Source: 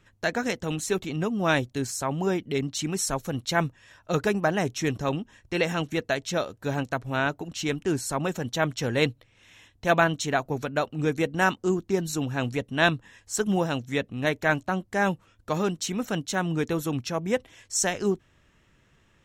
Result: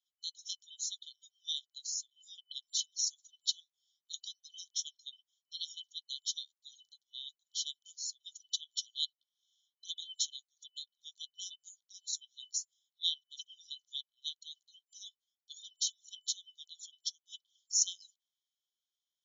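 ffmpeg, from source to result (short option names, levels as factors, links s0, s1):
-filter_complex "[0:a]asplit=3[s0][s1][s2];[s0]atrim=end=12.542[s3];[s1]atrim=start=12.538:end=13.382,asetpts=PTS-STARTPTS,areverse[s4];[s2]atrim=start=13.378[s5];[s3][s4]acrossfade=d=0.004:c1=hsin:c2=hsin[s6];[s6][s5]acrossfade=d=0.004:c1=hsin:c2=hsin,afftdn=nr=18:nf=-42,afftfilt=real='re*between(b*sr/4096,3000,7200)':imag='im*between(b*sr/4096,3000,7200)':win_size=4096:overlap=0.75"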